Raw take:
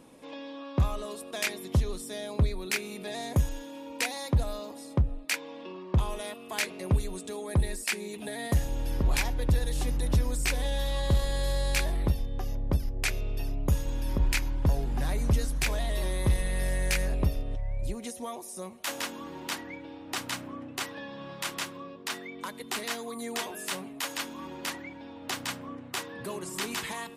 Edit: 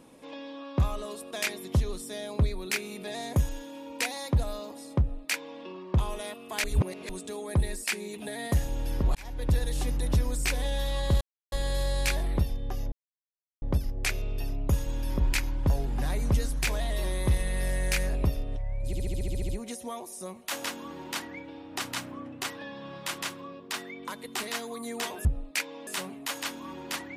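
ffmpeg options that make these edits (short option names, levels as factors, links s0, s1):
-filter_complex "[0:a]asplit=17[s0][s1][s2][s3][s4][s5][s6][s7][s8][s9][s10][s11][s12][s13][s14][s15][s16];[s0]atrim=end=6.642[s17];[s1]atrim=start=6.638:end=7.092,asetpts=PTS-STARTPTS,areverse[s18];[s2]atrim=start=7.088:end=9.15,asetpts=PTS-STARTPTS,afade=t=out:st=2.058:d=0.004:c=hsin[s19];[s3]atrim=start=9.15:end=11.21,asetpts=PTS-STARTPTS,afade=t=in:d=0.37,afade=t=out:st=2.056:d=0.004:c=hsin,apad=pad_dur=0.31[s20];[s4]atrim=start=11.21:end=12.61,asetpts=PTS-STARTPTS,afade=t=in:d=0.004:c=hsin,afade=t=out:st=1.396:d=0.004:c=hsin,apad=pad_dur=0.7[s21];[s5]atrim=start=12.61:end=17.922,asetpts=PTS-STARTPTS,afade=t=in:d=0.004:c=hsin[s22];[s6]atrim=start=17.848:end=17.922[s23];[s7]atrim=start=17.848:end=17.922[s24];[s8]atrim=start=17.848:end=17.922[s25];[s9]atrim=start=17.848:end=17.922[s26];[s10]atrim=start=17.848:end=17.922[s27];[s11]atrim=start=17.848:end=17.922[s28];[s12]atrim=start=17.848:end=17.922[s29];[s13]atrim=start=17.848:end=17.922[s30];[s14]atrim=start=17.848:end=23.612[s31];[s15]atrim=start=4.988:end=5.612[s32];[s16]atrim=start=23.608[s33];[s17][s18]acrossfade=d=0.004:c1=hsin:c2=hsin[s34];[s19][s20][s21][s22]concat=n=4:v=0:a=1[s35];[s34][s35]acrossfade=d=0.004:c1=hsin:c2=hsin[s36];[s36][s23]acrossfade=d=0.004:c1=hsin:c2=hsin[s37];[s37][s24]acrossfade=d=0.004:c1=hsin:c2=hsin[s38];[s38][s25]acrossfade=d=0.004:c1=hsin:c2=hsin[s39];[s39][s26]acrossfade=d=0.004:c1=hsin:c2=hsin[s40];[s40][s27]acrossfade=d=0.004:c1=hsin:c2=hsin[s41];[s41][s28]acrossfade=d=0.004:c1=hsin:c2=hsin[s42];[s42][s29]acrossfade=d=0.004:c1=hsin:c2=hsin[s43];[s43][s30]acrossfade=d=0.004:c1=hsin:c2=hsin[s44];[s44][s31]acrossfade=d=0.004:c1=hsin:c2=hsin[s45];[s45][s32]acrossfade=d=0.004:c1=hsin:c2=hsin[s46];[s46][s33]acrossfade=d=0.004:c1=hsin:c2=hsin"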